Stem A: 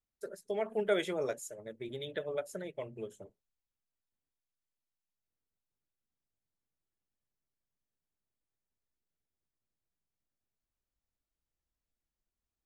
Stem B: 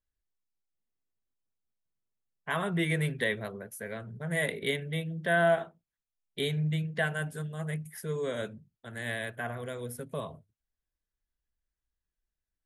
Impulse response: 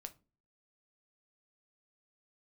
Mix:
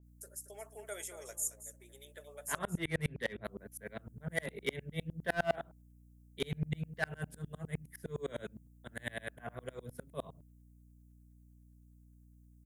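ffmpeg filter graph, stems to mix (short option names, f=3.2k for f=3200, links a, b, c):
-filter_complex "[0:a]highpass=590,aexciter=amount=14.7:drive=4.5:freq=5.8k,volume=-11.5dB,asplit=3[a][b][c];[a]atrim=end=2.59,asetpts=PTS-STARTPTS,afade=t=out:st=2.586:d=0.004:c=hsin[d];[b]atrim=start=2.59:end=3.46,asetpts=PTS-STARTPTS,volume=0[e];[c]atrim=start=3.46,asetpts=PTS-STARTPTS,afade=t=in:d=0.004:c=hsin[f];[d][e][f]concat=n=3:v=0:a=1,asplit=2[g][h];[h]volume=-12dB[i];[1:a]highpass=80,asoftclip=type=hard:threshold=-23dB,aeval=exprs='val(0)*pow(10,-36*if(lt(mod(-9.8*n/s,1),2*abs(-9.8)/1000),1-mod(-9.8*n/s,1)/(2*abs(-9.8)/1000),(mod(-9.8*n/s,1)-2*abs(-9.8)/1000)/(1-2*abs(-9.8)/1000))/20)':c=same,volume=2dB[j];[i]aecho=0:1:225:1[k];[g][j][k]amix=inputs=3:normalize=0,aeval=exprs='val(0)+0.00112*(sin(2*PI*60*n/s)+sin(2*PI*2*60*n/s)/2+sin(2*PI*3*60*n/s)/3+sin(2*PI*4*60*n/s)/4+sin(2*PI*5*60*n/s)/5)':c=same,adynamicequalizer=threshold=0.00224:dfrequency=3700:dqfactor=0.7:tfrequency=3700:tqfactor=0.7:attack=5:release=100:ratio=0.375:range=2:mode=cutabove:tftype=highshelf"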